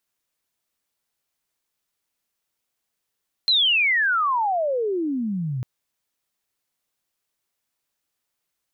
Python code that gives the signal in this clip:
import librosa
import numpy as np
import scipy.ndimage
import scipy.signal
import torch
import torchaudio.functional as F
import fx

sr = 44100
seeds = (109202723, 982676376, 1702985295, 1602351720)

y = fx.chirp(sr, length_s=2.15, from_hz=4200.0, to_hz=120.0, law='logarithmic', from_db=-15.0, to_db=-24.0)